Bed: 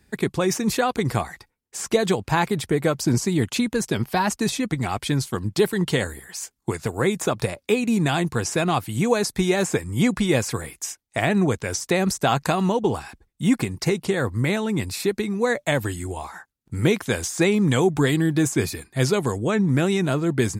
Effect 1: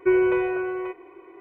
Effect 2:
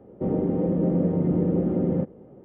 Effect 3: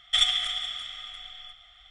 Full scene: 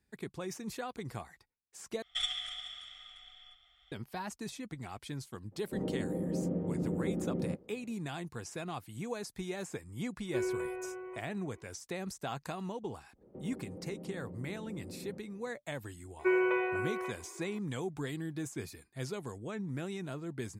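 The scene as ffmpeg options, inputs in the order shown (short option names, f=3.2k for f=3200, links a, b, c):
-filter_complex "[2:a]asplit=2[a][b];[1:a]asplit=2[c][d];[0:a]volume=-18.5dB[e];[b]acompressor=threshold=-30dB:ratio=6:attack=3.2:release=140:knee=1:detection=peak[f];[d]highpass=f=770:p=1[g];[e]asplit=2[h][i];[h]atrim=end=2.024[j];[3:a]atrim=end=1.9,asetpts=PTS-STARTPTS,volume=-12dB[k];[i]atrim=start=3.916[l];[a]atrim=end=2.44,asetpts=PTS-STARTPTS,volume=-11.5dB,afade=t=in:d=0.02,afade=t=out:st=2.42:d=0.02,adelay=5510[m];[c]atrim=end=1.4,asetpts=PTS-STARTPTS,volume=-15dB,afade=t=in:d=0.004:c=hsin,afade=t=out:st=1.396:d=0.004:c=hsin,adelay=10280[n];[f]atrim=end=2.44,asetpts=PTS-STARTPTS,volume=-13.5dB,afade=t=in:d=0.1,afade=t=out:st=2.34:d=0.1,adelay=13140[o];[g]atrim=end=1.4,asetpts=PTS-STARTPTS,volume=-2dB,afade=t=in:d=0.004:c=hsin,afade=t=out:st=1.396:d=0.004:c=hsin,adelay=16190[p];[j][k]acrossfade=d=0.004:c1=hsin:c2=hsin[q];[q][l]acrossfade=d=0.004:c1=hsin:c2=hsin[r];[r][m][n][o][p]amix=inputs=5:normalize=0"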